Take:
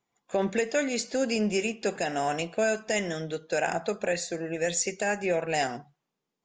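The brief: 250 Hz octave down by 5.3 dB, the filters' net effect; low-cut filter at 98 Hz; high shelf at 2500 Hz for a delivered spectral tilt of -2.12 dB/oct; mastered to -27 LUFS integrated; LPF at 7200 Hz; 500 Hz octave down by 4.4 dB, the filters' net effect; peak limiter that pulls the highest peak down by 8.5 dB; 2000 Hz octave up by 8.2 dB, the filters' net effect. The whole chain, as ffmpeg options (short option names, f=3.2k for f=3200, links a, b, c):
-af "highpass=98,lowpass=7.2k,equalizer=f=250:t=o:g=-5.5,equalizer=f=500:t=o:g=-5,equalizer=f=2k:t=o:g=9,highshelf=f=2.5k:g=4,volume=2.5dB,alimiter=limit=-16.5dB:level=0:latency=1"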